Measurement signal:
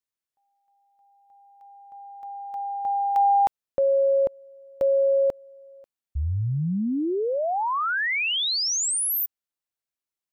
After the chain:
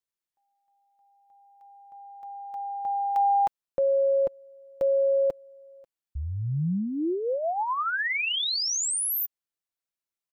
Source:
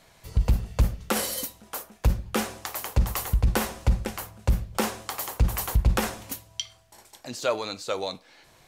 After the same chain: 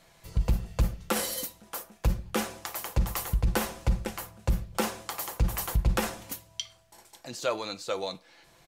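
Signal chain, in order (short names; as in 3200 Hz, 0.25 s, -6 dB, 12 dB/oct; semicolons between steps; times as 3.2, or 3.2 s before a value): comb 5.9 ms, depth 31%; gain -3 dB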